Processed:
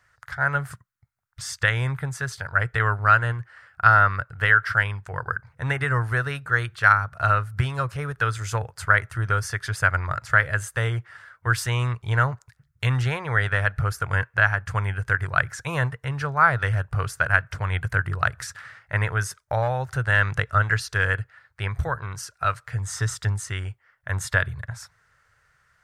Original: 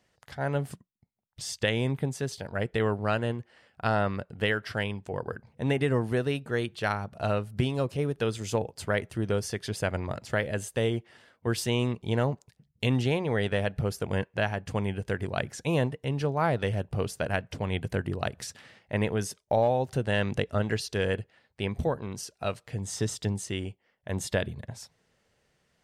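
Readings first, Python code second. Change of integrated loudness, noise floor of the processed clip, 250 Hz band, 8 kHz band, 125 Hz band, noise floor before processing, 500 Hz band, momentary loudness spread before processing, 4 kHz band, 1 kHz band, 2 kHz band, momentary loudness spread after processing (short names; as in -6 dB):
+6.5 dB, -67 dBFS, -6.5 dB, +3.5 dB, +6.0 dB, -72 dBFS, -4.0 dB, 8 LU, +0.5 dB, +10.5 dB, +13.5 dB, 12 LU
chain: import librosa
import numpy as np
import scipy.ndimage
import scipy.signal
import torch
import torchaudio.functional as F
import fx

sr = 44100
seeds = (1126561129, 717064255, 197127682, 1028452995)

y = fx.curve_eq(x, sr, hz=(120.0, 220.0, 830.0, 1400.0, 2900.0, 6700.0), db=(0, -21, -6, 11, -8, -4))
y = F.gain(torch.from_numpy(y), 7.5).numpy()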